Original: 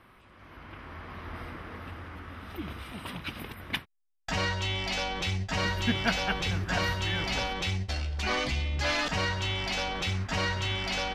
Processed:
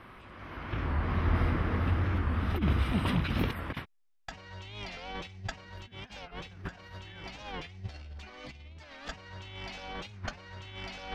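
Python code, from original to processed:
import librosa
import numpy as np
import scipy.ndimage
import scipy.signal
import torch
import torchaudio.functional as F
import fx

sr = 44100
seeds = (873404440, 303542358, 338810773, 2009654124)

y = fx.high_shelf(x, sr, hz=6400.0, db=-10.0)
y = fx.over_compress(y, sr, threshold_db=-38.0, ratio=-0.5)
y = fx.low_shelf(y, sr, hz=260.0, db=10.0, at=(0.73, 3.5))
y = fx.record_warp(y, sr, rpm=45.0, depth_cents=160.0)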